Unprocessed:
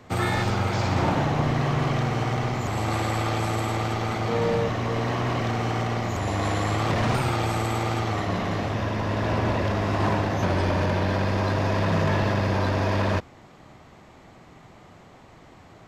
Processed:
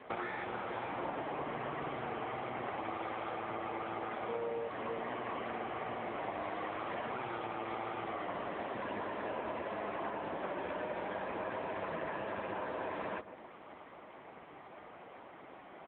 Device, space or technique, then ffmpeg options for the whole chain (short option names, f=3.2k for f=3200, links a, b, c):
voicemail: -filter_complex "[0:a]asettb=1/sr,asplit=3[a][b][c];[a]atrim=end=3.334[d];[b]atrim=start=3.33:end=4.12,asetpts=PTS-STARTPTS,afade=t=in:d=0.004:c=qsin,afade=t=out:st=0.786:d=0.004:c=qsin,acrossover=split=3800[e][f];[f]acompressor=threshold=-48dB:ratio=4:attack=1:release=60[g];[e][g]amix=inputs=2:normalize=0[h];[c]atrim=start=4.116[i];[d][h]acrossfade=d=0.004:c1=hsin:c2=qsin[j];[j][i]acrossfade=d=0.004:c1=qsin:c2=hsin,highpass=330,lowpass=2.9k,asplit=2[k][l];[l]adelay=142,lowpass=f=1.3k:p=1,volume=-17.5dB,asplit=2[m][n];[n]adelay=142,lowpass=f=1.3k:p=1,volume=0.25[o];[k][m][o]amix=inputs=3:normalize=0,acompressor=threshold=-36dB:ratio=10,volume=2.5dB" -ar 8000 -c:a libopencore_amrnb -b:a 6700